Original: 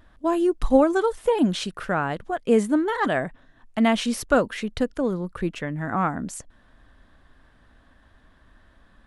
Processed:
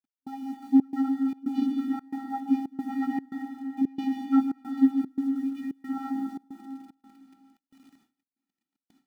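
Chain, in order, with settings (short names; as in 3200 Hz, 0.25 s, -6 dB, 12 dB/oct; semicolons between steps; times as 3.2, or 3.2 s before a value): CVSD 32 kbps; chorus voices 4, 0.5 Hz, delay 15 ms, depth 1.2 ms; vocoder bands 16, square 269 Hz; bit-crush 10-bit; bell 190 Hz +6.5 dB 0.7 oct; plate-style reverb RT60 2.6 s, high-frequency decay 0.85×, pre-delay 0.11 s, DRR 2.5 dB; step gate "x.xxxx.xxx.xxx" 113 bpm -24 dB; gate with hold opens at -49 dBFS; gain -2 dB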